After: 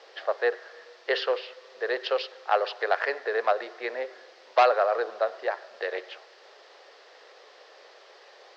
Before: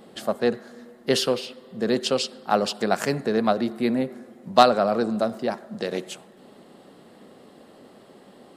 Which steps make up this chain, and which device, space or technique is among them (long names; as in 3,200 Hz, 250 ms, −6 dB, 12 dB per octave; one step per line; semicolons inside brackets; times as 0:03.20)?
drive-through speaker (band-pass filter 430–2,800 Hz; parametric band 1,800 Hz +7 dB 0.36 octaves; hard clipping −12 dBFS, distortion −12 dB; white noise bed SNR 22 dB)
elliptic band-pass filter 440–4,900 Hz, stop band 40 dB